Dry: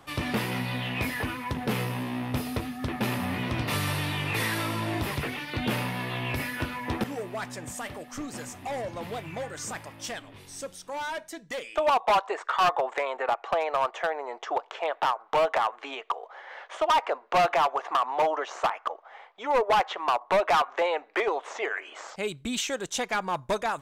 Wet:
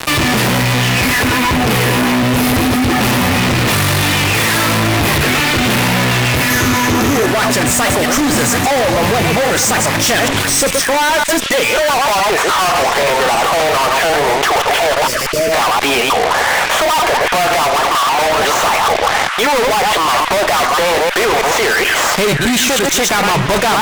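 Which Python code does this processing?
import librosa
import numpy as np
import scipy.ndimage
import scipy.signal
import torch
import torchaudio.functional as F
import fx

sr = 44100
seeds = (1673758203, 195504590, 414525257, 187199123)

p1 = fx.reverse_delay(x, sr, ms=106, wet_db=-7.5)
p2 = fx.fuzz(p1, sr, gain_db=48.0, gate_db=-48.0)
p3 = fx.graphic_eq_31(p2, sr, hz=(100, 250, 400, 1250, 6300, 12500), db=(10, 6, 6, 4, 10, 7), at=(6.5, 7.26))
p4 = fx.rider(p3, sr, range_db=10, speed_s=0.5)
p5 = fx.spec_erase(p4, sr, start_s=15.07, length_s=0.45, low_hz=650.0, high_hz=4300.0)
p6 = p5 + fx.echo_stepped(p5, sr, ms=700, hz=1700.0, octaves=0.7, feedback_pct=70, wet_db=-6.5, dry=0)
y = fx.env_flatten(p6, sr, amount_pct=50)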